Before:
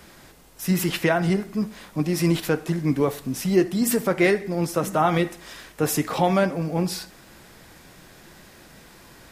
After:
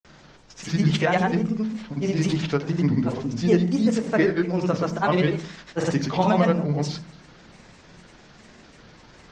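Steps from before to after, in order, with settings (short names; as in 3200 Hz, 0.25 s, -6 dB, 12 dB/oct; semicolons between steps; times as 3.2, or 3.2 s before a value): steep low-pass 7000 Hz 48 dB/oct; grains, grains 20/s, pitch spread up and down by 3 st; on a send: reverb RT60 0.40 s, pre-delay 27 ms, DRR 13.5 dB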